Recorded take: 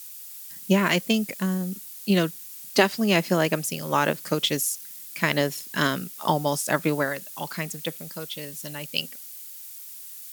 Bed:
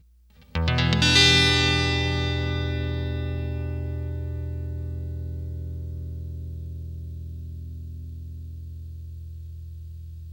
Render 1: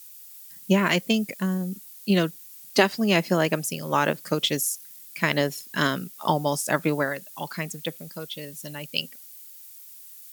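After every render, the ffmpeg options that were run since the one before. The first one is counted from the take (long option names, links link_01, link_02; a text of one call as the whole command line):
ffmpeg -i in.wav -af "afftdn=noise_reduction=6:noise_floor=-41" out.wav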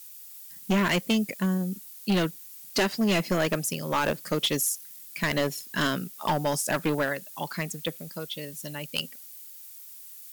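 ffmpeg -i in.wav -af "acrusher=bits=10:mix=0:aa=0.000001,asoftclip=type=hard:threshold=-19.5dB" out.wav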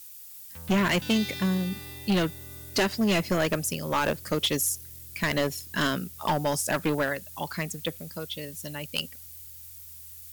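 ffmpeg -i in.wav -i bed.wav -filter_complex "[1:a]volume=-20.5dB[link_01];[0:a][link_01]amix=inputs=2:normalize=0" out.wav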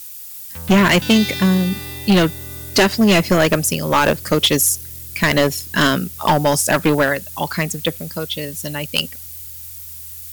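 ffmpeg -i in.wav -af "volume=11dB" out.wav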